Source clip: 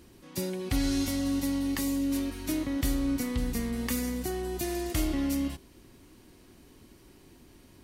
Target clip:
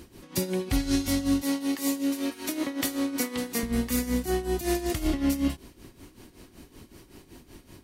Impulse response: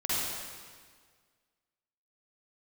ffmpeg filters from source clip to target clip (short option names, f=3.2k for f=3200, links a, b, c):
-filter_complex "[0:a]asettb=1/sr,asplit=3[a][b][c];[a]atrim=end=1.424[d];[b]atrim=start=1.42:end=3.63,asetpts=PTS-STARTPTS,afade=t=in:d=0.004:c=qsin,afade=t=out:st=2.206:d=0.004:c=qsin,highpass=320[e];[c]atrim=start=3.626[f];[d][e]acrossfade=d=0.004:c1=hsin:c2=qsin[g];[g][f]acrossfade=d=0.004:c1=qsin:c2=hsin,alimiter=limit=-23.5dB:level=0:latency=1:release=34,tremolo=f=5.3:d=0.76,volume=8.5dB"